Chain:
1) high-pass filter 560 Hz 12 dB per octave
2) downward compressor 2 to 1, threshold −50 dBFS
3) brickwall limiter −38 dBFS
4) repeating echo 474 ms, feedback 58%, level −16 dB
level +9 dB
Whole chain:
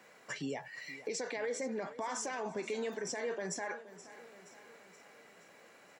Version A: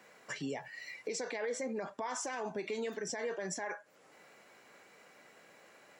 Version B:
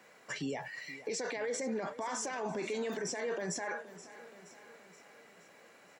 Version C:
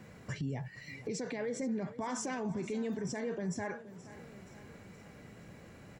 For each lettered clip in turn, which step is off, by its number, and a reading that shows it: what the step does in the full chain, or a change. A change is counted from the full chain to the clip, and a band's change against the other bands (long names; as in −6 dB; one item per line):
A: 4, echo-to-direct ratio −14.0 dB to none audible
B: 2, average gain reduction 10.0 dB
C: 1, 125 Hz band +14.5 dB